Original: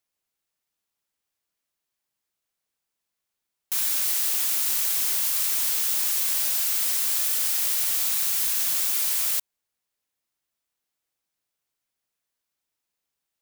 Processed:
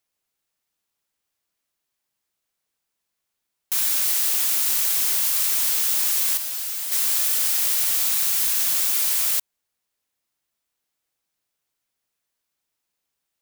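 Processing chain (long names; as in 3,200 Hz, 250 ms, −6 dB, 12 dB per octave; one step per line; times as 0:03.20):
0:06.37–0:06.92: tuned comb filter 160 Hz, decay 0.17 s, harmonics all, mix 80%
level +3 dB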